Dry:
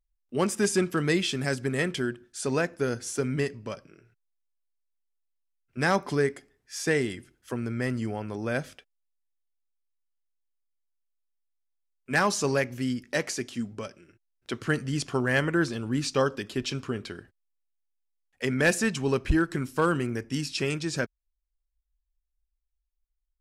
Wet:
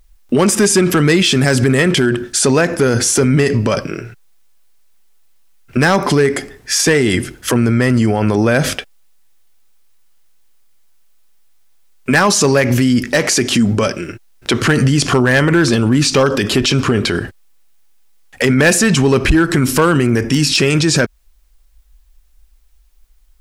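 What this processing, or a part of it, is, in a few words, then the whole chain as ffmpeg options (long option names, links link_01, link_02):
loud club master: -af "acompressor=threshold=-29dB:ratio=2,asoftclip=type=hard:threshold=-23dB,alimiter=level_in=34.5dB:limit=-1dB:release=50:level=0:latency=1,volume=-4.5dB"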